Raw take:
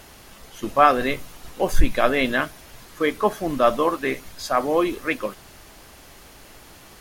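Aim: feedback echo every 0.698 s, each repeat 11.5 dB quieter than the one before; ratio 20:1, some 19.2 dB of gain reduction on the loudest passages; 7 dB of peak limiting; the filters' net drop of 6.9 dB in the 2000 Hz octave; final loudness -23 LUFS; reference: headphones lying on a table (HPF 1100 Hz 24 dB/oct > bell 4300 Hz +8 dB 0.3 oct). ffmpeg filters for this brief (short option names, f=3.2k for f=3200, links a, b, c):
-af "equalizer=f=2k:t=o:g=-9,acompressor=threshold=-27dB:ratio=20,alimiter=limit=-23.5dB:level=0:latency=1,highpass=f=1.1k:w=0.5412,highpass=f=1.1k:w=1.3066,equalizer=f=4.3k:t=o:w=0.3:g=8,aecho=1:1:698|1396|2094:0.266|0.0718|0.0194,volume=19dB"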